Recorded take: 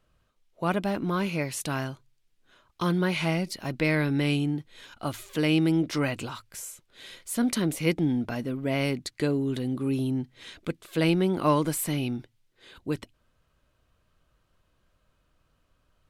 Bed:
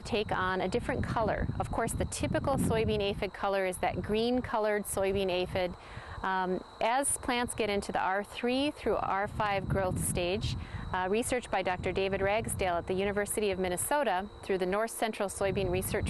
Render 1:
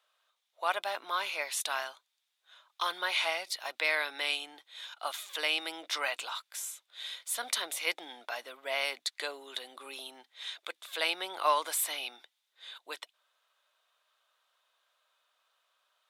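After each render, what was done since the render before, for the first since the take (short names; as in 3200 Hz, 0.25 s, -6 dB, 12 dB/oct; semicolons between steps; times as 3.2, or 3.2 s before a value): HPF 680 Hz 24 dB/oct; bell 3600 Hz +10 dB 0.23 oct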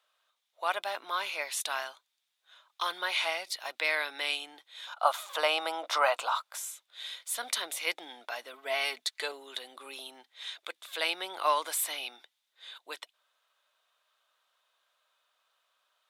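4.87–6.58 band shelf 840 Hz +11.5 dB; 8.53–9.32 comb 4.6 ms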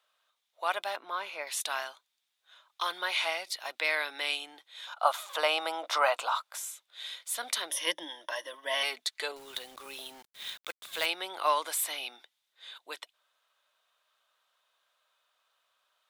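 0.96–1.47 high shelf 2400 Hz -11 dB; 7.7–8.83 ripple EQ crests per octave 1.2, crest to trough 16 dB; 9.36–11.06 companded quantiser 4-bit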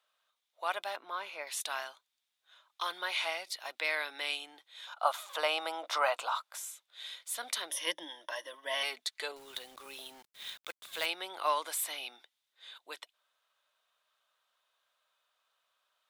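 gain -3.5 dB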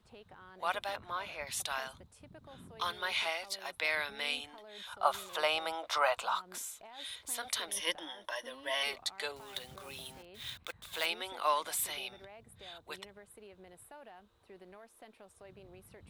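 add bed -24 dB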